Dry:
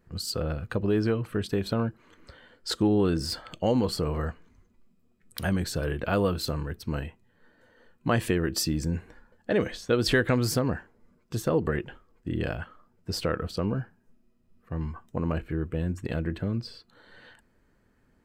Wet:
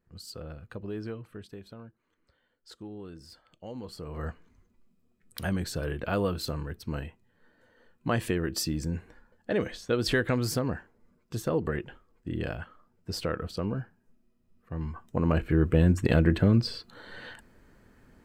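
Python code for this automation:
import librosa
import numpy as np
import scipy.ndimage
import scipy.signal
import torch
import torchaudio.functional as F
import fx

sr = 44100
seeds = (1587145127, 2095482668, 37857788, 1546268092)

y = fx.gain(x, sr, db=fx.line((1.12, -11.5), (1.78, -19.5), (3.52, -19.5), (4.08, -11.5), (4.27, -3.0), (14.74, -3.0), (15.69, 8.0)))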